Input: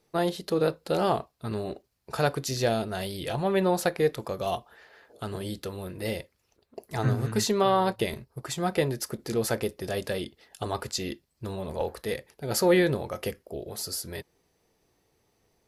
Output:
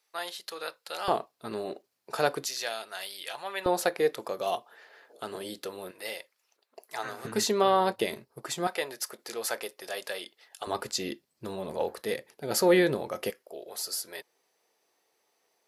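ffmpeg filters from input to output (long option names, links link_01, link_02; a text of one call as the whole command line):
ffmpeg -i in.wav -af "asetnsamples=nb_out_samples=441:pad=0,asendcmd='1.08 highpass f 290;2.45 highpass f 1100;3.66 highpass f 340;5.91 highpass f 770;7.25 highpass f 250;8.67 highpass f 710;10.67 highpass f 200;13.3 highpass f 550',highpass=1200" out.wav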